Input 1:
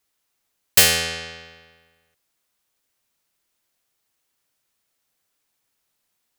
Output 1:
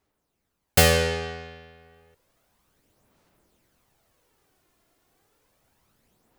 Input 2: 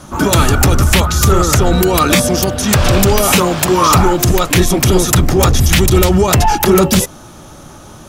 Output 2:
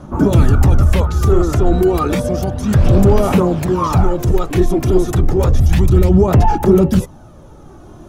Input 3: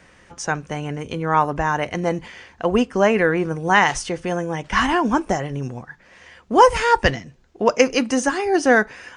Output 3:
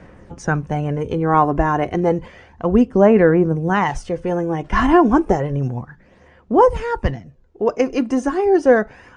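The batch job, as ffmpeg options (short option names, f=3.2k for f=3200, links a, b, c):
-af "aphaser=in_gain=1:out_gain=1:delay=2.9:decay=0.41:speed=0.31:type=sinusoidal,tiltshelf=f=1.3k:g=8.5,dynaudnorm=f=580:g=3:m=10.5dB,volume=-1dB"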